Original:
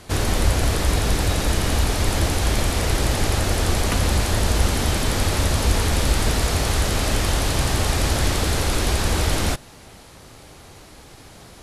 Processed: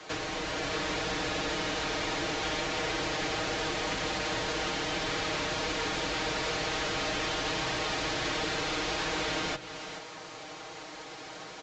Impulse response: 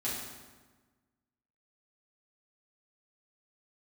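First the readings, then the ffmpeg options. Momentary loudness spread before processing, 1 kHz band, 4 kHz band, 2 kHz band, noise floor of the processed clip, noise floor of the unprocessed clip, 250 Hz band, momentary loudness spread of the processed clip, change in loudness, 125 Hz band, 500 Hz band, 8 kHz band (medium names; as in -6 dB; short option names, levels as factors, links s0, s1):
1 LU, -6.0 dB, -6.0 dB, -4.5 dB, -45 dBFS, -45 dBFS, -10.5 dB, 12 LU, -10.0 dB, -21.0 dB, -7.0 dB, -13.5 dB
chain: -filter_complex "[0:a]acrossover=split=140|450|1700[s0][s1][s2][s3];[s2]asoftclip=type=hard:threshold=0.0251[s4];[s0][s1][s4][s3]amix=inputs=4:normalize=0,aecho=1:1:430:0.106,acrossover=split=140|5000[s5][s6][s7];[s5]acompressor=threshold=0.0562:ratio=4[s8];[s6]acompressor=threshold=0.0224:ratio=4[s9];[s7]acompressor=threshold=0.00562:ratio=4[s10];[s8][s9][s10]amix=inputs=3:normalize=0,bass=f=250:g=-8,treble=f=4000:g=-5,aecho=1:1:6.4:0.8,bandreject=f=126:t=h:w=4,bandreject=f=252:t=h:w=4,bandreject=f=378:t=h:w=4,bandreject=f=504:t=h:w=4,bandreject=f=630:t=h:w=4,bandreject=f=756:t=h:w=4,bandreject=f=882:t=h:w=4,bandreject=f=1008:t=h:w=4,bandreject=f=1134:t=h:w=4,bandreject=f=1260:t=h:w=4,bandreject=f=1386:t=h:w=4,bandreject=f=1512:t=h:w=4,bandreject=f=1638:t=h:w=4,bandreject=f=1764:t=h:w=4,bandreject=f=1890:t=h:w=4,bandreject=f=2016:t=h:w=4,bandreject=f=2142:t=h:w=4,bandreject=f=2268:t=h:w=4,bandreject=f=2394:t=h:w=4,bandreject=f=2520:t=h:w=4,bandreject=f=2646:t=h:w=4,bandreject=f=2772:t=h:w=4,bandreject=f=2898:t=h:w=4,bandreject=f=3024:t=h:w=4,bandreject=f=3150:t=h:w=4,bandreject=f=3276:t=h:w=4,bandreject=f=3402:t=h:w=4,bandreject=f=3528:t=h:w=4,bandreject=f=3654:t=h:w=4,bandreject=f=3780:t=h:w=4,bandreject=f=3906:t=h:w=4,bandreject=f=4032:t=h:w=4,bandreject=f=4158:t=h:w=4,bandreject=f=4284:t=h:w=4,bandreject=f=4410:t=h:w=4,bandreject=f=4536:t=h:w=4,bandreject=f=4662:t=h:w=4,bandreject=f=4788:t=h:w=4,dynaudnorm=f=120:g=9:m=1.41,highpass=f=93:p=1,lowshelf=f=290:g=-7" -ar 16000 -c:a pcm_mulaw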